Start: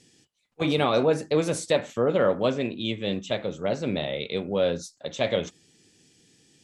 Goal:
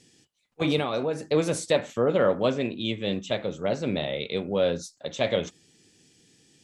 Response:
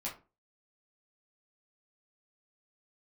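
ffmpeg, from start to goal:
-filter_complex "[0:a]asettb=1/sr,asplit=3[s0][s1][s2];[s0]atrim=end=0.784[s3];[s1]atrim=start=0.78:end=1.3,asetpts=PTS-STARTPTS,afade=t=in:d=0.004:c=qsin,afade=t=out:st=0.516:d=0.004:c=qsin,acompressor=threshold=0.0631:ratio=6[s4];[s2]atrim=start=1.296[s5];[s3][s4]acrossfade=d=0.004:c1=hsin:c2=qsin[s6];[s6][s5]acrossfade=d=0.004:c1=qsin:c2=hsin"

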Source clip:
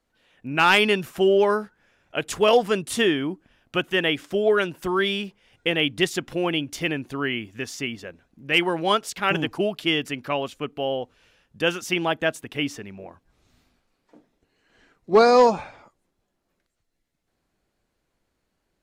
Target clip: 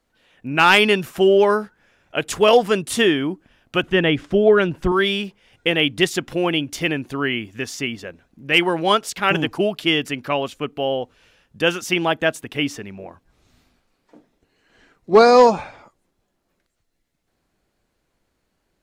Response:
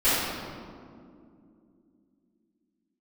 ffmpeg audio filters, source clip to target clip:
-filter_complex "[0:a]asettb=1/sr,asplit=3[s0][s1][s2];[s0]atrim=end=3.834[s3];[s1]atrim=start=3.83:end=4.92,asetpts=PTS-STARTPTS,afade=t=in:d=0.004:c=qsin,afade=t=out:st=1.086:d=0.004:c=qsin,aemphasis=mode=reproduction:type=bsi[s4];[s2]atrim=start=4.916[s5];[s3][s4]acrossfade=d=0.004:c1=hsin:c2=qsin[s6];[s6][s5]acrossfade=d=0.004:c1=qsin:c2=hsin,volume=1.58"

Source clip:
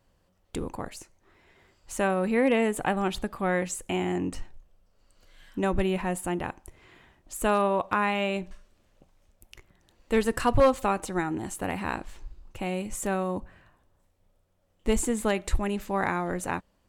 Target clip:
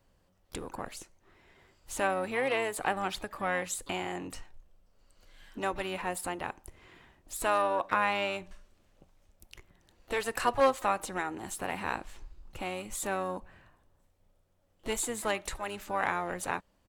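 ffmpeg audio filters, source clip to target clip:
-filter_complex "[0:a]acrossover=split=510|3100[s0][s1][s2];[s0]acompressor=threshold=0.0112:ratio=12[s3];[s3][s1][s2]amix=inputs=3:normalize=0,asplit=3[s4][s5][s6];[s5]asetrate=22050,aresample=44100,atempo=2,volume=0.2[s7];[s6]asetrate=66075,aresample=44100,atempo=0.66742,volume=0.158[s8];[s4][s7][s8]amix=inputs=3:normalize=0,volume=0.841"

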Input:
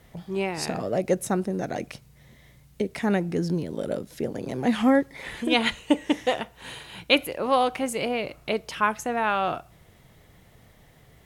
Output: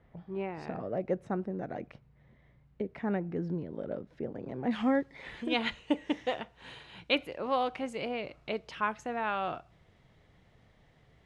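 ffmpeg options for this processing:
-af "asetnsamples=n=441:p=0,asendcmd='4.71 lowpass f 4500',lowpass=1800,volume=0.398"

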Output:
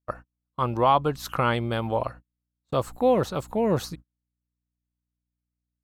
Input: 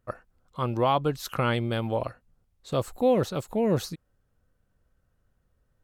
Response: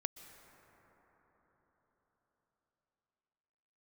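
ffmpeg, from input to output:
-af "equalizer=f=1000:w=1.3:g=6,aeval=exprs='val(0)+0.00447*(sin(2*PI*60*n/s)+sin(2*PI*2*60*n/s)/2+sin(2*PI*3*60*n/s)/3+sin(2*PI*4*60*n/s)/4+sin(2*PI*5*60*n/s)/5)':c=same,agate=range=0.0158:threshold=0.0112:ratio=16:detection=peak"

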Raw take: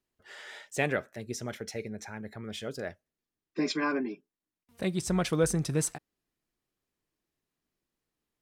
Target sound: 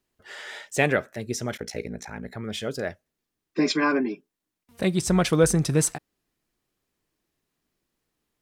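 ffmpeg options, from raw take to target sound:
-filter_complex "[0:a]asplit=3[s0][s1][s2];[s0]afade=t=out:st=1.57:d=0.02[s3];[s1]aeval=exprs='val(0)*sin(2*PI*29*n/s)':c=same,afade=t=in:st=1.57:d=0.02,afade=t=out:st=2.31:d=0.02[s4];[s2]afade=t=in:st=2.31:d=0.02[s5];[s3][s4][s5]amix=inputs=3:normalize=0,volume=2.24"

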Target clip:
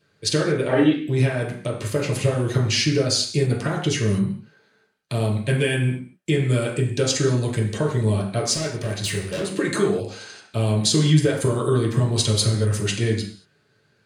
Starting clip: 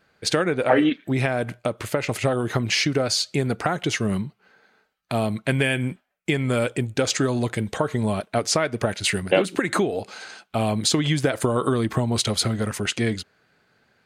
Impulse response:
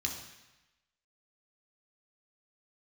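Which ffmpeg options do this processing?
-filter_complex "[0:a]asplit=3[s0][s1][s2];[s0]afade=t=out:st=8.52:d=0.02[s3];[s1]asoftclip=type=hard:threshold=0.0668,afade=t=in:st=8.52:d=0.02,afade=t=out:st=9.46:d=0.02[s4];[s2]afade=t=in:st=9.46:d=0.02[s5];[s3][s4][s5]amix=inputs=3:normalize=0[s6];[1:a]atrim=start_sample=2205,afade=t=out:st=0.41:d=0.01,atrim=end_sample=18522,asetrate=66150,aresample=44100[s7];[s6][s7]afir=irnorm=-1:irlink=0"

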